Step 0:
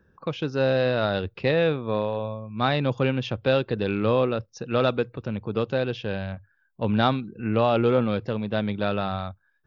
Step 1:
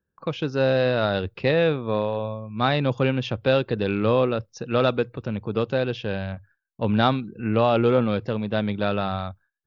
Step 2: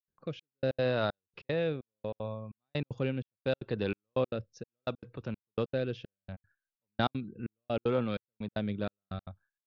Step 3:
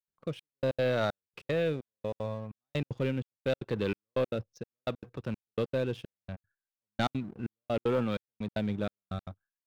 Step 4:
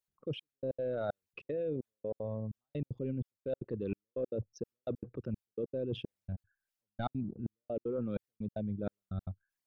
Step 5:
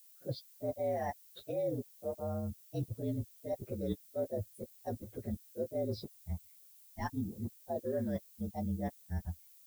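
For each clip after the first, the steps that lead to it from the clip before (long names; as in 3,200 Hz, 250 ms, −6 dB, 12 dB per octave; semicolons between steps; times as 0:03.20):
noise gate with hold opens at −47 dBFS; level +1.5 dB
rotating-speaker cabinet horn 0.7 Hz; gate pattern ".xxxx...x" 191 BPM −60 dB; level −7 dB
leveller curve on the samples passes 2; level −5 dB
spectral envelope exaggerated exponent 2; reversed playback; downward compressor 5 to 1, threshold −38 dBFS, peak gain reduction 12 dB; reversed playback; level +4 dB
partials spread apart or drawn together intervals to 116%; background noise violet −62 dBFS; level +2 dB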